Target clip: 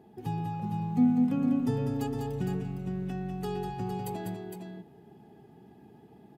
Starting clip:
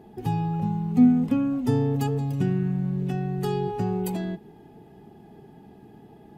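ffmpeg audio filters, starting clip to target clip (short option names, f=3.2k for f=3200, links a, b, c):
-filter_complex "[0:a]highpass=73,asettb=1/sr,asplit=3[a][b][c];[a]atrim=end=1.604[d];[b]atrim=start=1.6:end=3.74,asetpts=PTS-STARTPTS,afade=t=in:d=0.004:c=qsin,afade=t=out:st=2.136:d=0.004:c=qsin,aeval=exprs='val(0)+0.00562*(sin(2*PI*50*n/s)+sin(2*PI*2*50*n/s)/2+sin(2*PI*3*50*n/s)/3+sin(2*PI*4*50*n/s)/4+sin(2*PI*5*50*n/s)/5)':c=same[e];[c]atrim=start=3.736[f];[d][e]acrossfade=d=0.004:c1=hsin:c2=qsin[g];[g][f]acrossfade=d=0.004:c1=qsin:c2=hsin,aecho=1:1:198|460:0.501|0.501,volume=-7dB"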